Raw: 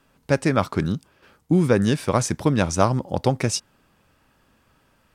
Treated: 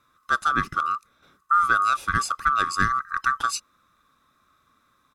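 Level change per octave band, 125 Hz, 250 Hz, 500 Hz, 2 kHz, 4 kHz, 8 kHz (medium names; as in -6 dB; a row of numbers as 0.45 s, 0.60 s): -16.0 dB, -17.0 dB, -21.0 dB, +7.5 dB, -2.0 dB, -5.0 dB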